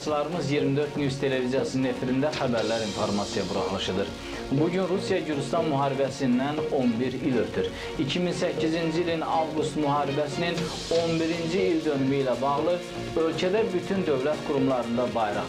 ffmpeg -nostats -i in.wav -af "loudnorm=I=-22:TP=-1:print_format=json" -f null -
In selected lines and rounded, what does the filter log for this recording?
"input_i" : "-26.4",
"input_tp" : "-12.3",
"input_lra" : "0.9",
"input_thresh" : "-36.4",